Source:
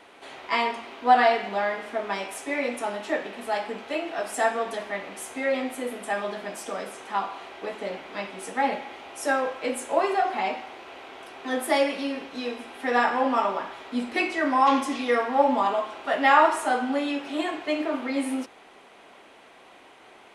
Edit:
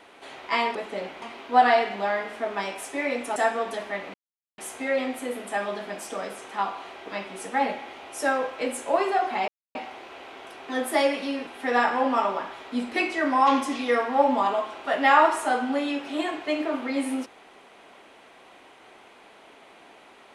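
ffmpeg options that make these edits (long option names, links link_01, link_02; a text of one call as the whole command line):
ffmpeg -i in.wav -filter_complex "[0:a]asplit=8[link_01][link_02][link_03][link_04][link_05][link_06][link_07][link_08];[link_01]atrim=end=0.752[link_09];[link_02]atrim=start=7.638:end=8.112[link_10];[link_03]atrim=start=0.748:end=2.892[link_11];[link_04]atrim=start=4.358:end=5.14,asetpts=PTS-STARTPTS,afade=type=out:start_time=0.778:duration=0.004:curve=hsin,apad=pad_dur=0.44[link_12];[link_05]atrim=start=5.14:end=7.642,asetpts=PTS-STARTPTS,afade=type=in:duration=0.004:curve=hsin[link_13];[link_06]atrim=start=8.108:end=10.51,asetpts=PTS-STARTPTS,afade=type=out:start_time=2.398:duration=0.004:curve=hsin,apad=pad_dur=0.27[link_14];[link_07]atrim=start=10.51:end=12.232,asetpts=PTS-STARTPTS,afade=type=in:duration=0.004:curve=hsin[link_15];[link_08]atrim=start=12.668[link_16];[link_09][link_10]acrossfade=duration=0.004:curve1=hsin:curve2=hsin[link_17];[link_17][link_11]acrossfade=duration=0.004:curve1=hsin:curve2=hsin[link_18];[link_12][link_13]concat=n=2:v=0:a=1[link_19];[link_18][link_19]acrossfade=duration=0.004:curve1=hsin:curve2=hsin[link_20];[link_14][link_15]concat=n=2:v=0:a=1[link_21];[link_20][link_21]acrossfade=duration=0.004:curve1=hsin:curve2=hsin[link_22];[link_22][link_16]acrossfade=duration=0.004:curve1=hsin:curve2=hsin" out.wav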